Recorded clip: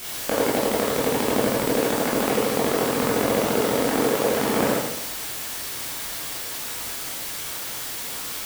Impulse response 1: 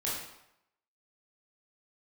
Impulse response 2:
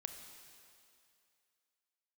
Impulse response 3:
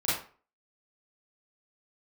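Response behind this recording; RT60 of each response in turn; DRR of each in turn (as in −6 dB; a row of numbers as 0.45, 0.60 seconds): 1; 0.80, 2.5, 0.40 seconds; −7.0, 5.5, −10.5 decibels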